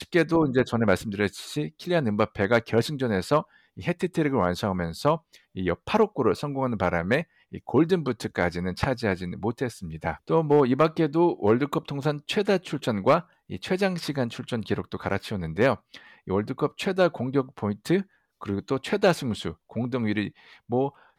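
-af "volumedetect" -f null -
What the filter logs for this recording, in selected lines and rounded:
mean_volume: -25.7 dB
max_volume: -10.6 dB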